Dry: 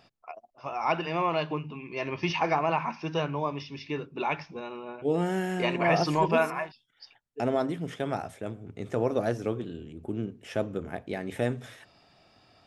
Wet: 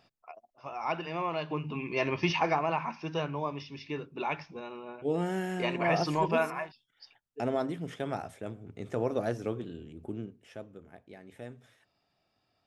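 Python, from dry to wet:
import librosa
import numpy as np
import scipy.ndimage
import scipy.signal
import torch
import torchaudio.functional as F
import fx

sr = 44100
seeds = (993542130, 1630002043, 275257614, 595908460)

y = fx.gain(x, sr, db=fx.line((1.43, -5.5), (1.79, 5.5), (2.68, -3.5), (10.06, -3.5), (10.67, -16.0)))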